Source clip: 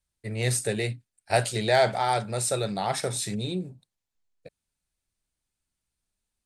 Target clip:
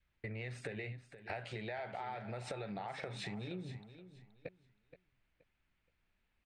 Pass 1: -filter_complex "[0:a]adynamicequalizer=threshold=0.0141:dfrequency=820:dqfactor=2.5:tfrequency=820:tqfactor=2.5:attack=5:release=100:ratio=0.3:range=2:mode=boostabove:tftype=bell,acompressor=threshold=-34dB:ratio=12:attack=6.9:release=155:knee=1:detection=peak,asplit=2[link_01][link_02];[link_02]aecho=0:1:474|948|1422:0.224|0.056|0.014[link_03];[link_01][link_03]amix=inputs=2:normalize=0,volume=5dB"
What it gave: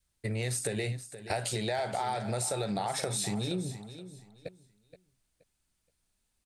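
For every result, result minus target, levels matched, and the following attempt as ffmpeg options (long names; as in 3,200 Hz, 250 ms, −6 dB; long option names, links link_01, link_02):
downward compressor: peak gain reduction −11.5 dB; 2,000 Hz band −6.0 dB
-filter_complex "[0:a]adynamicequalizer=threshold=0.0141:dfrequency=820:dqfactor=2.5:tfrequency=820:tqfactor=2.5:attack=5:release=100:ratio=0.3:range=2:mode=boostabove:tftype=bell,acompressor=threshold=-45.5dB:ratio=12:attack=6.9:release=155:knee=1:detection=peak,asplit=2[link_01][link_02];[link_02]aecho=0:1:474|948|1422:0.224|0.056|0.014[link_03];[link_01][link_03]amix=inputs=2:normalize=0,volume=5dB"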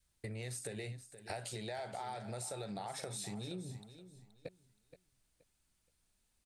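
2,000 Hz band −5.0 dB
-filter_complex "[0:a]adynamicequalizer=threshold=0.0141:dfrequency=820:dqfactor=2.5:tfrequency=820:tqfactor=2.5:attack=5:release=100:ratio=0.3:range=2:mode=boostabove:tftype=bell,lowpass=frequency=2300:width_type=q:width=1.9,acompressor=threshold=-45.5dB:ratio=12:attack=6.9:release=155:knee=1:detection=peak,asplit=2[link_01][link_02];[link_02]aecho=0:1:474|948|1422:0.224|0.056|0.014[link_03];[link_01][link_03]amix=inputs=2:normalize=0,volume=5dB"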